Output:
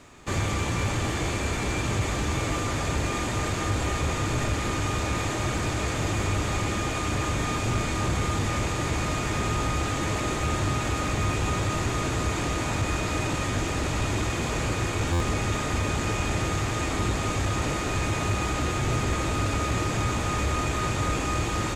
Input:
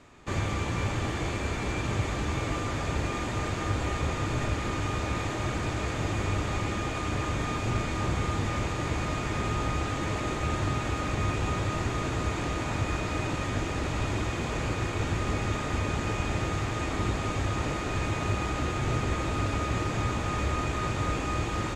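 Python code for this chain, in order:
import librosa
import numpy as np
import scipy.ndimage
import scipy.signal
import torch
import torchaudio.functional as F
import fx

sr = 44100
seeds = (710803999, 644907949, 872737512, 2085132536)

y = fx.high_shelf(x, sr, hz=6900.0, db=11.0)
y = 10.0 ** (-20.0 / 20.0) * np.tanh(y / 10.0 ** (-20.0 / 20.0))
y = fx.buffer_glitch(y, sr, at_s=(15.12,), block=512, repeats=6)
y = y * 10.0 ** (3.5 / 20.0)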